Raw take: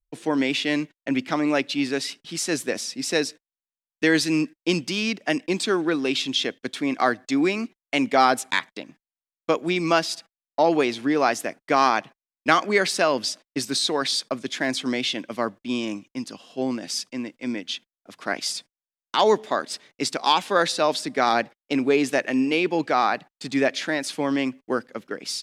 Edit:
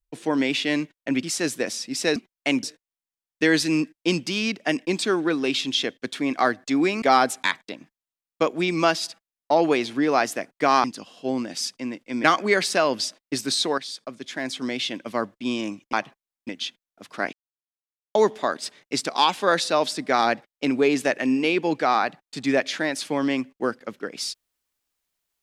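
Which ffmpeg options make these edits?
-filter_complex "[0:a]asplit=12[a][b][c][d][e][f][g][h][i][j][k][l];[a]atrim=end=1.232[m];[b]atrim=start=2.308:end=3.242[n];[c]atrim=start=7.628:end=8.102[o];[d]atrim=start=3.238:end=7.632[p];[e]atrim=start=8.098:end=11.922[q];[f]atrim=start=16.168:end=17.572[r];[g]atrim=start=12.478:end=14.02,asetpts=PTS-STARTPTS,afade=t=out:st=1.538:d=0.004:c=hsin:silence=0.237137[s];[h]atrim=start=14.02:end=16.172,asetpts=PTS-STARTPTS,afade=t=in:d=1.43:silence=0.237137[t];[i]atrim=start=11.918:end=12.482[u];[j]atrim=start=17.568:end=18.41,asetpts=PTS-STARTPTS,afade=t=out:st=0.838:d=0.004:c=hsin[v];[k]atrim=start=18.41:end=19.23,asetpts=PTS-STARTPTS,volume=0[w];[l]atrim=start=19.23,asetpts=PTS-STARTPTS,afade=t=in:d=0.004:c=hsin[x];[m][n]acrossfade=d=0.004:c1=hsin:c2=hsin[y];[y][o]acrossfade=d=0.004:c1=hsin:c2=hsin[z];[z][p]acrossfade=d=0.004:c1=hsin:c2=hsin[aa];[aa][q]acrossfade=d=0.004:c1=hsin:c2=hsin[ab];[ab][r]acrossfade=d=0.004:c1=hsin:c2=hsin[ac];[s][t]concat=n=2:v=0:a=1[ad];[ac][ad]acrossfade=d=0.004:c1=hsin:c2=hsin[ae];[ae][u]acrossfade=d=0.004:c1=hsin:c2=hsin[af];[v][w][x]concat=n=3:v=0:a=1[ag];[af][ag]acrossfade=d=0.004:c1=hsin:c2=hsin"

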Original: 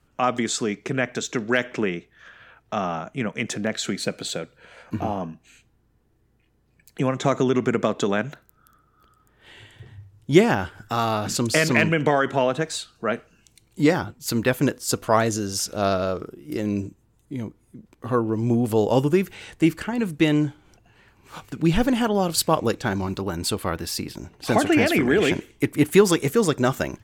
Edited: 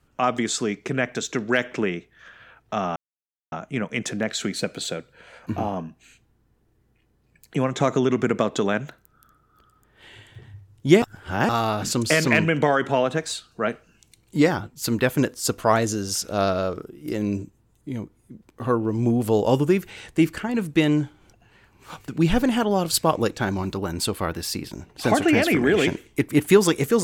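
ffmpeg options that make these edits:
-filter_complex "[0:a]asplit=4[a][b][c][d];[a]atrim=end=2.96,asetpts=PTS-STARTPTS,afade=t=out:st=2.956:d=0.004:c=hsin,apad=pad_dur=0.56[e];[b]atrim=start=2.96:end=10.462,asetpts=PTS-STARTPTS,afade=t=in:d=0.004:c=hsin[f];[c]atrim=start=10.458:end=10.932,asetpts=PTS-STARTPTS,areverse[g];[d]atrim=start=10.928[h];[e][f]concat=n=2:v=0:a=1[i];[i][g]acrossfade=d=0.004:c1=hsin:c2=hsin[j];[j][h]acrossfade=d=0.004:c1=hsin:c2=hsin"

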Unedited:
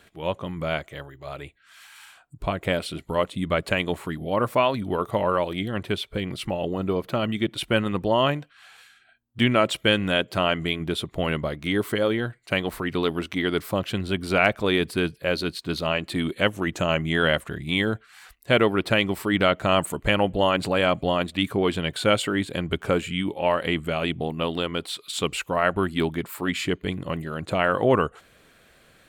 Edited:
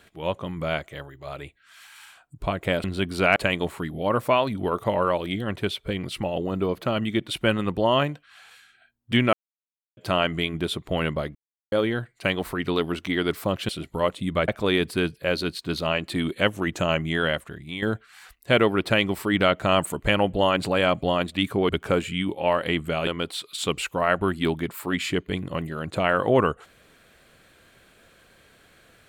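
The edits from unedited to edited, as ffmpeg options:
-filter_complex "[0:a]asplit=12[a][b][c][d][e][f][g][h][i][j][k][l];[a]atrim=end=2.842[m];[b]atrim=start=13.958:end=14.482[n];[c]atrim=start=3.628:end=9.6,asetpts=PTS-STARTPTS,afade=t=out:st=5.968:d=0.004:c=hsin[o];[d]atrim=start=9.6:end=10.24,asetpts=PTS-STARTPTS,volume=0[p];[e]atrim=start=10.24:end=11.62,asetpts=PTS-STARTPTS,afade=t=in:d=0.004:c=hsin,afade=t=out:st=1.376:d=0.004:c=hsin[q];[f]atrim=start=11.62:end=11.99,asetpts=PTS-STARTPTS,volume=0[r];[g]atrim=start=11.99:end=13.962,asetpts=PTS-STARTPTS,afade=t=in:d=0.004:c=hsin[s];[h]atrim=start=2.838:end=3.632[t];[i]atrim=start=14.478:end=17.82,asetpts=PTS-STARTPTS,afade=t=out:st=2.402:d=0.94:silence=0.281838[u];[j]atrim=start=17.82:end=21.692,asetpts=PTS-STARTPTS,afade=t=in:d=0.004:c=hsin:silence=0.281838[v];[k]atrim=start=22.678:end=24.062[w];[l]atrim=start=24.618[x];[m][n]acrossfade=d=0.004:c1=hsin:c2=hsin[y];[o][p][q][r][s]concat=n=5:v=0:a=1[z];[y][z]acrossfade=d=0.004:c1=hsin:c2=hsin[aa];[aa][t]acrossfade=d=0.004:c1=hsin:c2=hsin[ab];[u][v]concat=n=2:v=0:a=1[ac];[ab][ac]acrossfade=d=0.004:c1=hsin:c2=hsin[ad];[ad][w]acrossfade=d=0.004:c1=hsin:c2=hsin[ae];[ae][x]acrossfade=d=0.004:c1=hsin:c2=hsin"

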